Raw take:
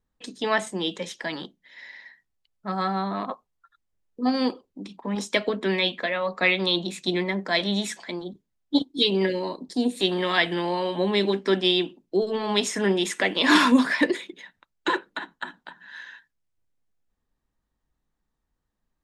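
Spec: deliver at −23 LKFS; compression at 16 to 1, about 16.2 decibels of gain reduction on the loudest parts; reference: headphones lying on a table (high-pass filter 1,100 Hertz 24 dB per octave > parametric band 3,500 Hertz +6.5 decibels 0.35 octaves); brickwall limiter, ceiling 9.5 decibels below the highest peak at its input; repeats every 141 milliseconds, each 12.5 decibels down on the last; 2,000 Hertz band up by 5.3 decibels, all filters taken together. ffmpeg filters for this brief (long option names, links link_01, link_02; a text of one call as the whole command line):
ffmpeg -i in.wav -af "equalizer=frequency=2000:width_type=o:gain=6,acompressor=threshold=-28dB:ratio=16,alimiter=limit=-23.5dB:level=0:latency=1,highpass=frequency=1100:width=0.5412,highpass=frequency=1100:width=1.3066,equalizer=frequency=3500:width_type=o:width=0.35:gain=6.5,aecho=1:1:141|282|423:0.237|0.0569|0.0137,volume=12.5dB" out.wav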